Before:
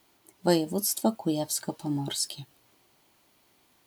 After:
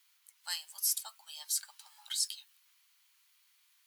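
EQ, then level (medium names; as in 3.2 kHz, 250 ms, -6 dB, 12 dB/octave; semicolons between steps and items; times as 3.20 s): Bessel high-pass 1.9 kHz, order 8; -2.0 dB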